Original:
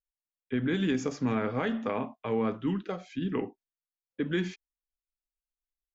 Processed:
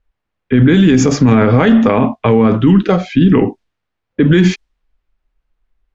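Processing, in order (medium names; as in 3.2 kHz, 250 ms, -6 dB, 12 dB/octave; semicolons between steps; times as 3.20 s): level-controlled noise filter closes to 2.1 kHz, open at -26.5 dBFS; bass shelf 180 Hz +10.5 dB; loudness maximiser +24 dB; trim -1 dB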